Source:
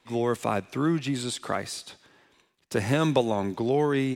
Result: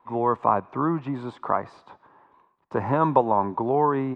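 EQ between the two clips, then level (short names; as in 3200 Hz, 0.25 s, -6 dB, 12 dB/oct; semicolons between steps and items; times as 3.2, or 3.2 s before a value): synth low-pass 1000 Hz, resonance Q 4.9; tilt +2 dB/oct; low shelf 250 Hz +5.5 dB; 0.0 dB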